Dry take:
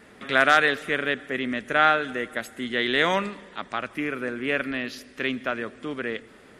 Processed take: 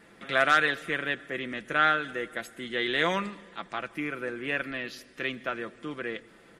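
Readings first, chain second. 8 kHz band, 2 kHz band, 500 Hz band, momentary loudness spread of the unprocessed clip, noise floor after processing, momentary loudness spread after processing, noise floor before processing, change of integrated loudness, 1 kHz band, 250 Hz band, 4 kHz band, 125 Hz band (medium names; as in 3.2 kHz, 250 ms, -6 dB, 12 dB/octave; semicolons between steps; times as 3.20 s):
-4.0 dB, -4.0 dB, -5.0 dB, 13 LU, -56 dBFS, 14 LU, -51 dBFS, -4.0 dB, -4.5 dB, -6.0 dB, -4.0 dB, -3.0 dB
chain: comb 5.9 ms, depth 46%; trim -5 dB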